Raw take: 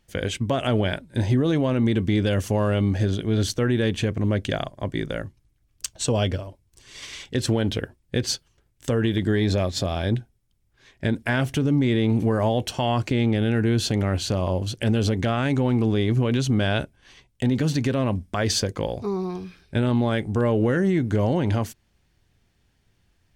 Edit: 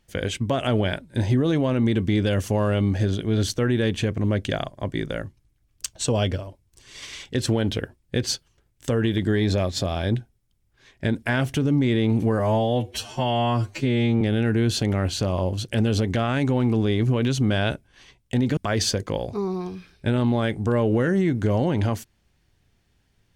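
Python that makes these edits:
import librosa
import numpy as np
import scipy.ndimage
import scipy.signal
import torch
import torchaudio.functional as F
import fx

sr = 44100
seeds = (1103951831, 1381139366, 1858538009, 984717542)

y = fx.edit(x, sr, fx.stretch_span(start_s=12.39, length_s=0.91, factor=2.0),
    fx.cut(start_s=17.66, length_s=0.6), tone=tone)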